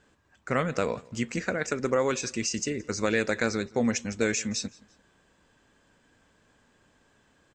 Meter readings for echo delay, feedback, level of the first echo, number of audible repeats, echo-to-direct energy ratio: 170 ms, 35%, −24.0 dB, 2, −23.5 dB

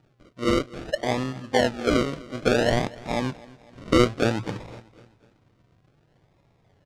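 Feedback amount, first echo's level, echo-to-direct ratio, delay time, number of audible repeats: 49%, −21.0 dB, −20.0 dB, 251 ms, 3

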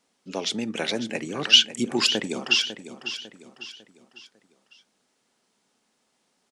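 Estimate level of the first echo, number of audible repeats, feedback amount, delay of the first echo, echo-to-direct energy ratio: −11.5 dB, 4, 42%, 550 ms, −10.5 dB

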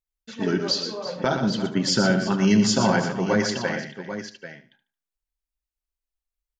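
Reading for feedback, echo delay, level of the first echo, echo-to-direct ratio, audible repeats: repeats not evenly spaced, 74 ms, −13.5 dB, −4.5 dB, 8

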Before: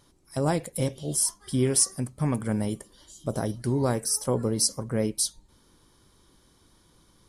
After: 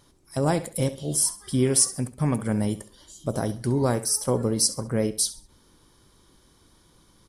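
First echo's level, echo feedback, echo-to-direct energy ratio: −15.5 dB, 31%, −15.0 dB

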